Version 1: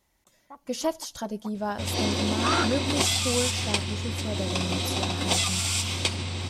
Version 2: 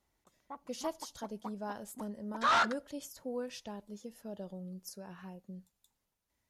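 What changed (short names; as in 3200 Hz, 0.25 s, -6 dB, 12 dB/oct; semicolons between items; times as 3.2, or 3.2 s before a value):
speech -10.5 dB; second sound: muted; master: remove notch 450 Hz, Q 13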